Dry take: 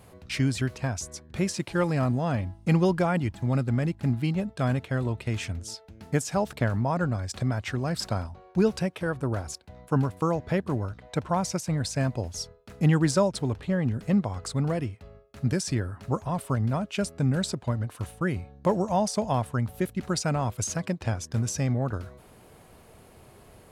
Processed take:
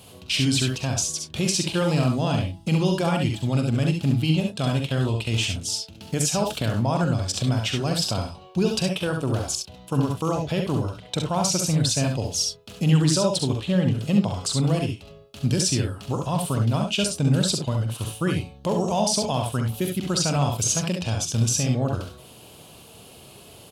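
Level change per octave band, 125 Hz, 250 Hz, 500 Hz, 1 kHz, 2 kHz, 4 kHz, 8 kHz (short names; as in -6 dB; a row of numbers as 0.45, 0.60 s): +4.0, +3.5, +2.0, +2.0, +2.5, +12.0, +10.5 dB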